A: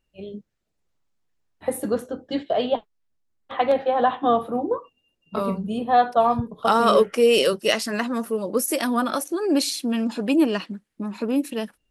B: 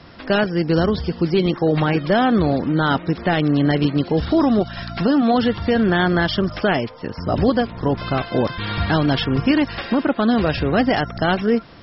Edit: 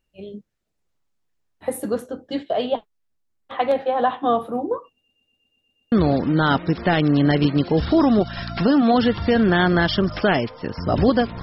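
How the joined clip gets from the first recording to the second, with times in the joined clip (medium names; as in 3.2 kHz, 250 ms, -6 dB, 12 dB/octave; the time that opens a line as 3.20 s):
A
4.96 s: stutter in place 0.12 s, 8 plays
5.92 s: go over to B from 2.32 s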